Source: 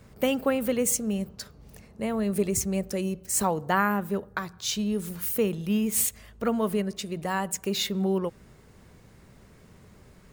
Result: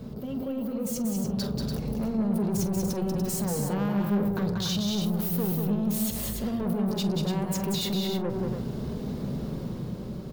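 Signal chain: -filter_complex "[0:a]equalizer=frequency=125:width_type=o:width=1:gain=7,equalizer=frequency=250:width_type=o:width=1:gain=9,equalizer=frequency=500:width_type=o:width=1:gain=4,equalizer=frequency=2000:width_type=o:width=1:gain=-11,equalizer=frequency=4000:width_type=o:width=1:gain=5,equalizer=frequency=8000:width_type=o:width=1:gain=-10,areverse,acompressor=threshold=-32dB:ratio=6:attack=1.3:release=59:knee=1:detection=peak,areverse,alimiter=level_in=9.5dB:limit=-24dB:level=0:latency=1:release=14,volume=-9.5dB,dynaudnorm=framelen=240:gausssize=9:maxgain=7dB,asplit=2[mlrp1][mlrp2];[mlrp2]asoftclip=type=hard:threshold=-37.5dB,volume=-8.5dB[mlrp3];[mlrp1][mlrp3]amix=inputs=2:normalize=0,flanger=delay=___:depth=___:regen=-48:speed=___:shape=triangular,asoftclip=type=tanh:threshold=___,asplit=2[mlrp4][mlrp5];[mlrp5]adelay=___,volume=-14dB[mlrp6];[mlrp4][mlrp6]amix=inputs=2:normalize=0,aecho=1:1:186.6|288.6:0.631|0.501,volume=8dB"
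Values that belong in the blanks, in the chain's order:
4.6, 1.2, 0.56, -33.5dB, 45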